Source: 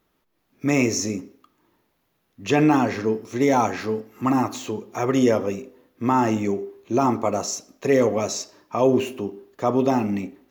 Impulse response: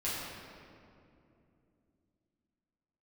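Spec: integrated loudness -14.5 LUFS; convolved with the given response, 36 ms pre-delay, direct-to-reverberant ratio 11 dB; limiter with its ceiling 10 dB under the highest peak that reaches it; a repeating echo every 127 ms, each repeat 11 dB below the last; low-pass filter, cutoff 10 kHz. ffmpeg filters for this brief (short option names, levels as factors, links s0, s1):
-filter_complex "[0:a]lowpass=10000,alimiter=limit=0.158:level=0:latency=1,aecho=1:1:127|254|381:0.282|0.0789|0.0221,asplit=2[s0][s1];[1:a]atrim=start_sample=2205,adelay=36[s2];[s1][s2]afir=irnorm=-1:irlink=0,volume=0.141[s3];[s0][s3]amix=inputs=2:normalize=0,volume=3.98"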